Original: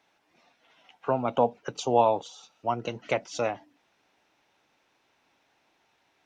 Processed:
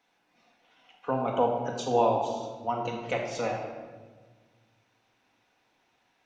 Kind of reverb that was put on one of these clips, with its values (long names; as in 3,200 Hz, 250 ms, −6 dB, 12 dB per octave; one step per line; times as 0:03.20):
rectangular room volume 1,300 cubic metres, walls mixed, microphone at 1.9 metres
level −4.5 dB